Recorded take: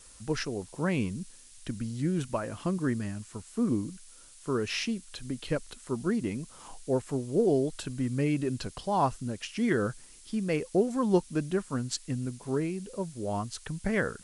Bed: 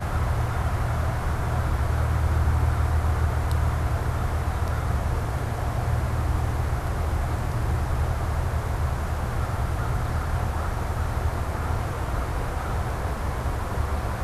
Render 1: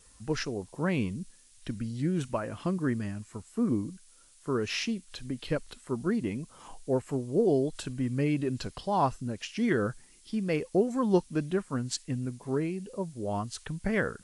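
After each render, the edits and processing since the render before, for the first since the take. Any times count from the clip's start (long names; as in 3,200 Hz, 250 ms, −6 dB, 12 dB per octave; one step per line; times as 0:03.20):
noise reduction from a noise print 6 dB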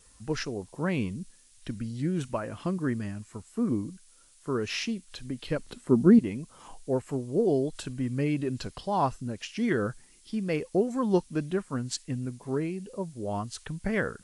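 0:05.59–0:06.19: parametric band 230 Hz +12.5 dB 2.5 octaves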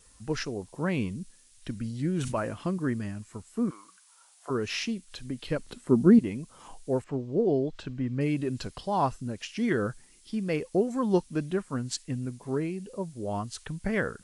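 0:01.79–0:02.54: level that may fall only so fast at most 55 dB per second
0:03.69–0:04.49: high-pass with resonance 1,400 Hz → 690 Hz, resonance Q 5.3
0:07.04–0:08.21: high-frequency loss of the air 160 metres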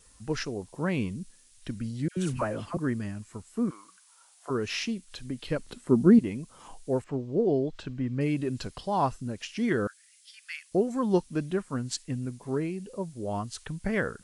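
0:02.08–0:02.77: all-pass dispersion lows, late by 89 ms, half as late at 1,200 Hz
0:09.87–0:10.72: Butterworth high-pass 1,500 Hz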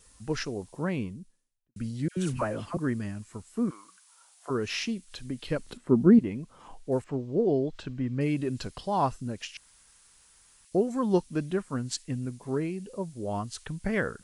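0:00.61–0:01.76: fade out and dull
0:05.77–0:06.92: high-shelf EQ 4,500 Hz −12 dB
0:09.57–0:10.65: fill with room tone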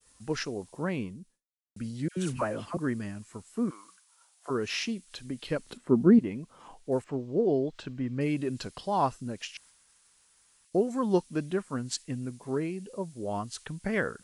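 downward expander −54 dBFS
low-shelf EQ 93 Hz −10 dB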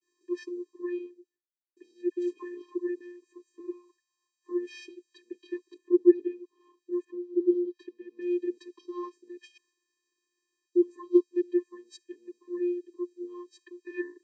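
channel vocoder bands 16, square 353 Hz
notch comb filter 1,100 Hz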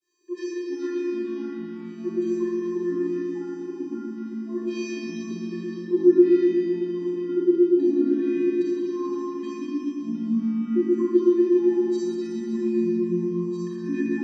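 delay with pitch and tempo change per echo 328 ms, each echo −4 semitones, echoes 3, each echo −6 dB
four-comb reverb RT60 3 s, combs from 27 ms, DRR −6 dB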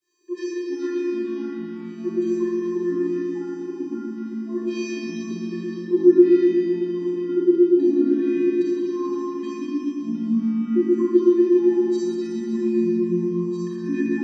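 level +2.5 dB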